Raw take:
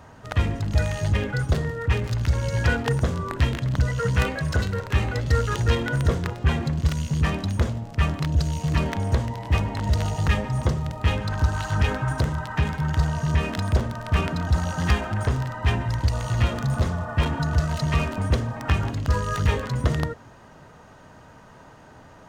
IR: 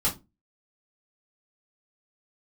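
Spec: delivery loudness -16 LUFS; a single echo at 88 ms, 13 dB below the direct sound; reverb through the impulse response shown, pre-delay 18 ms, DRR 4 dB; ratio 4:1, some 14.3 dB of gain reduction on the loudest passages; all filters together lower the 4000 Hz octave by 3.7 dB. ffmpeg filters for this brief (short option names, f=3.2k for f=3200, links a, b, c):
-filter_complex "[0:a]equalizer=f=4k:t=o:g=-5,acompressor=threshold=-33dB:ratio=4,aecho=1:1:88:0.224,asplit=2[a][b];[1:a]atrim=start_sample=2205,adelay=18[c];[b][c]afir=irnorm=-1:irlink=0,volume=-13dB[d];[a][d]amix=inputs=2:normalize=0,volume=15.5dB"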